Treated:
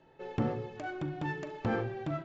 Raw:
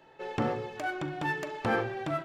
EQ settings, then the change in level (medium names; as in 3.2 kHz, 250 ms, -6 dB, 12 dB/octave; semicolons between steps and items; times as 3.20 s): elliptic low-pass 7.1 kHz, stop band 40 dB; bass shelf 420 Hz +12 dB; -8.0 dB